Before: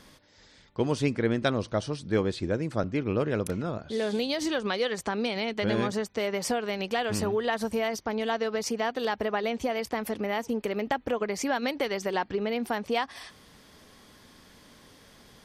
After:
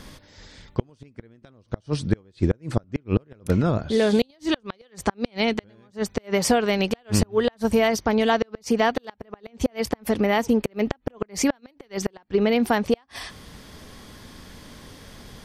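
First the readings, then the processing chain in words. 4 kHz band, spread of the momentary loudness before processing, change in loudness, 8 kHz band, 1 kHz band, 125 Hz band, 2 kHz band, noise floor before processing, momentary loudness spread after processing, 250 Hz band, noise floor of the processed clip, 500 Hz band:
+3.0 dB, 4 LU, +5.0 dB, +6.0 dB, +3.0 dB, +6.5 dB, +2.5 dB, −56 dBFS, 23 LU, +6.5 dB, −59 dBFS, +4.0 dB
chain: gate with flip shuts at −18 dBFS, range −36 dB
low-shelf EQ 140 Hz +9.5 dB
level +8 dB

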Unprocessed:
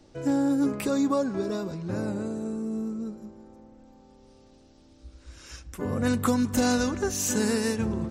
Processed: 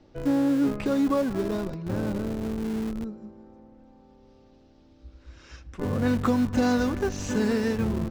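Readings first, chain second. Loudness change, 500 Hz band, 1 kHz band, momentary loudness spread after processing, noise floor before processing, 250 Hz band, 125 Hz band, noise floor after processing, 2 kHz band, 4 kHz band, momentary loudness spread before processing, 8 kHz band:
+1.0 dB, +1.0 dB, 0.0 dB, 9 LU, −56 dBFS, +1.5 dB, +2.5 dB, −56 dBFS, 0.0 dB, −3.5 dB, 12 LU, −11.0 dB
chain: high-frequency loss of the air 160 metres
in parallel at −8 dB: comparator with hysteresis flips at −28.5 dBFS

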